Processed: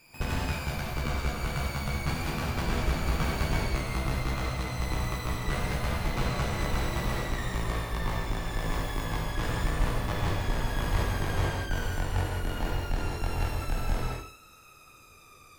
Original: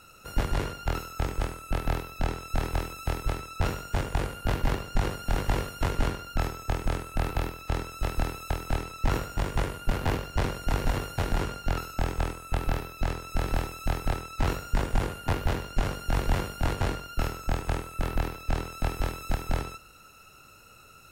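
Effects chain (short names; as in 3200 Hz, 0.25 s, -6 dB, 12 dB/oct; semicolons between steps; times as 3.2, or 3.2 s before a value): speed glide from 181% -> 90%; non-linear reverb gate 0.24 s flat, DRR -4.5 dB; gain -6.5 dB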